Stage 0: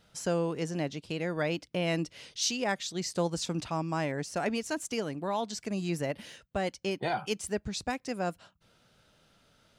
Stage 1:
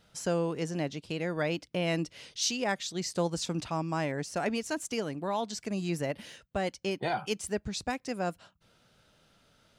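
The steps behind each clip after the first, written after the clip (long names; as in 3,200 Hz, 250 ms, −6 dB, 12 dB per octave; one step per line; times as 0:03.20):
no processing that can be heard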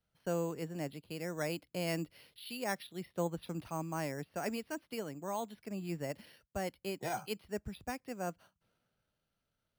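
bad sample-rate conversion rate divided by 6×, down filtered, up hold
multiband upward and downward expander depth 40%
level −6.5 dB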